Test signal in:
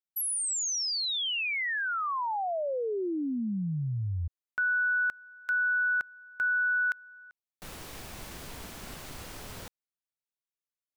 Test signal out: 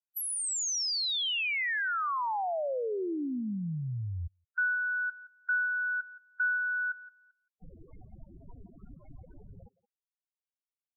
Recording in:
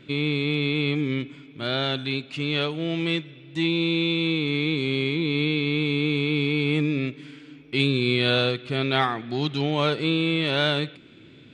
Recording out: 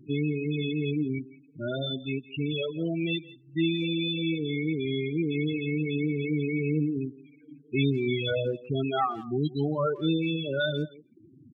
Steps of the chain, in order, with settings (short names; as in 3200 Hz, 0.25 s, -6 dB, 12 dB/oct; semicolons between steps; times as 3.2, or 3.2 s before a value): loudest bins only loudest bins 8; reverb removal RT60 0.94 s; speakerphone echo 0.17 s, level -17 dB